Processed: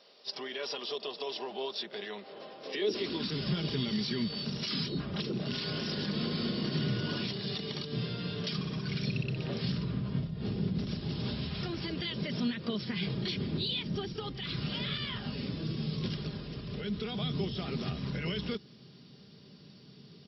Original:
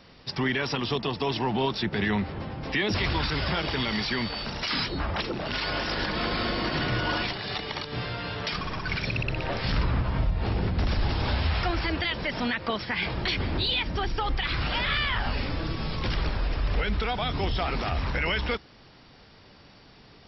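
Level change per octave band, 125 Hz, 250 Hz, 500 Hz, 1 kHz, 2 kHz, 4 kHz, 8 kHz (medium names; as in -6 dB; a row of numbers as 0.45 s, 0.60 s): -5.0 dB, -2.5 dB, -5.5 dB, -15.0 dB, -13.5 dB, -5.5 dB, no reading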